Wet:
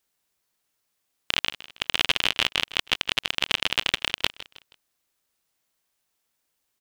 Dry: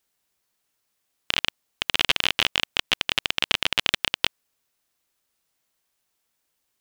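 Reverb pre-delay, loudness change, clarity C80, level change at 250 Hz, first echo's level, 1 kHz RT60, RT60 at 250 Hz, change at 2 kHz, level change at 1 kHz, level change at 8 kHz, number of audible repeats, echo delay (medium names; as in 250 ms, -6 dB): no reverb, -1.0 dB, no reverb, -1.0 dB, -16.5 dB, no reverb, no reverb, -1.0 dB, -1.0 dB, -1.0 dB, 3, 159 ms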